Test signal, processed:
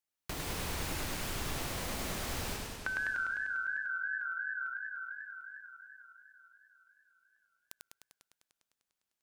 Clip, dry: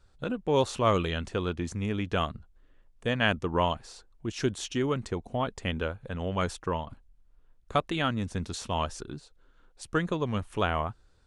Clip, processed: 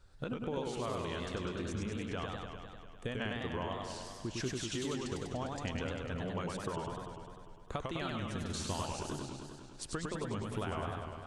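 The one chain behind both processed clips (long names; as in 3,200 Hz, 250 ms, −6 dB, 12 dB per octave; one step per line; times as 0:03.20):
downward compressor 12 to 1, threshold −36 dBFS
feedback echo with a swinging delay time 100 ms, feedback 74%, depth 165 cents, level −3 dB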